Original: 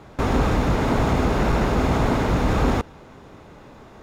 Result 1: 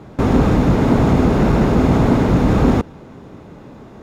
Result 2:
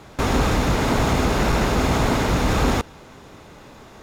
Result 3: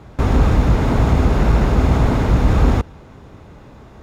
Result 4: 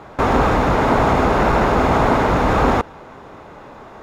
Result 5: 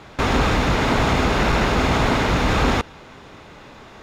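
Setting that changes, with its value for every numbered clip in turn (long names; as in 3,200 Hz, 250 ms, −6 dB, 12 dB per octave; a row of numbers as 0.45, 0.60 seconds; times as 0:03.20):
parametric band, centre frequency: 200, 14,000, 62, 960, 3,200 Hertz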